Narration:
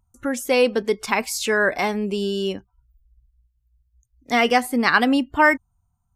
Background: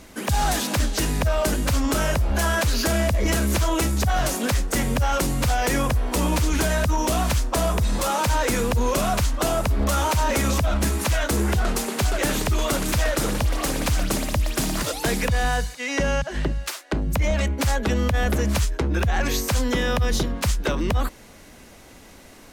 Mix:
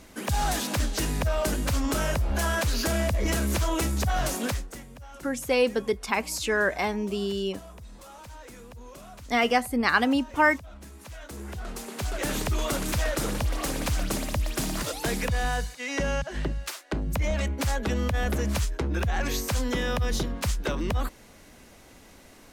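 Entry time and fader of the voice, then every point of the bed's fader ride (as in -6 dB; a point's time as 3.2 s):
5.00 s, -5.0 dB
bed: 4.47 s -4.5 dB
4.87 s -23.5 dB
10.89 s -23.5 dB
12.37 s -5 dB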